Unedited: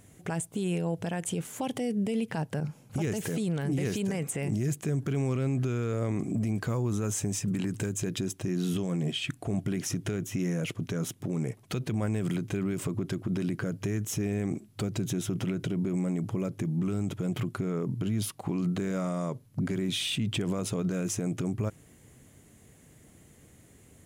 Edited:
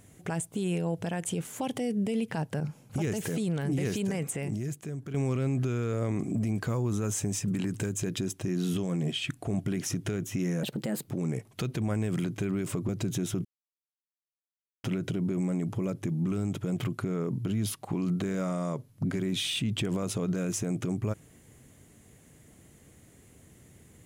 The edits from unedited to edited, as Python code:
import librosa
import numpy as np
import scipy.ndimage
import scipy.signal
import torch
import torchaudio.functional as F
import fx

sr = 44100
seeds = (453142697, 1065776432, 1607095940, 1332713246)

y = fx.edit(x, sr, fx.fade_out_to(start_s=4.28, length_s=0.86, curve='qua', floor_db=-8.5),
    fx.speed_span(start_s=10.63, length_s=0.57, speed=1.27),
    fx.cut(start_s=13.01, length_s=1.83),
    fx.insert_silence(at_s=15.4, length_s=1.39), tone=tone)